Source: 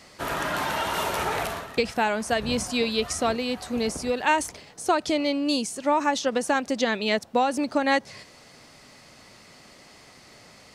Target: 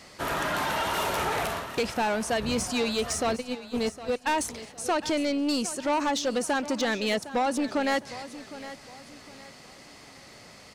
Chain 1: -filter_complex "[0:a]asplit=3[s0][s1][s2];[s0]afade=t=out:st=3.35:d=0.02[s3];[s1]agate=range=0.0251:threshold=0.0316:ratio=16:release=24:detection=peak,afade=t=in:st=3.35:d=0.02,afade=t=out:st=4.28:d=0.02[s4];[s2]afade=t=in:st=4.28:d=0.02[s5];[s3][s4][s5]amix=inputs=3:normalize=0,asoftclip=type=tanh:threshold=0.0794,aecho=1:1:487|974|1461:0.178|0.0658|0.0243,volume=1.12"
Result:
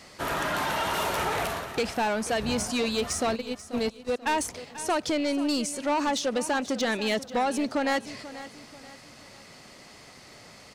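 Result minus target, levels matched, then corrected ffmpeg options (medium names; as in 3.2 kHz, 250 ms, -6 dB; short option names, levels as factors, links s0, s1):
echo 273 ms early
-filter_complex "[0:a]asplit=3[s0][s1][s2];[s0]afade=t=out:st=3.35:d=0.02[s3];[s1]agate=range=0.0251:threshold=0.0316:ratio=16:release=24:detection=peak,afade=t=in:st=3.35:d=0.02,afade=t=out:st=4.28:d=0.02[s4];[s2]afade=t=in:st=4.28:d=0.02[s5];[s3][s4][s5]amix=inputs=3:normalize=0,asoftclip=type=tanh:threshold=0.0794,aecho=1:1:760|1520|2280:0.178|0.0658|0.0243,volume=1.12"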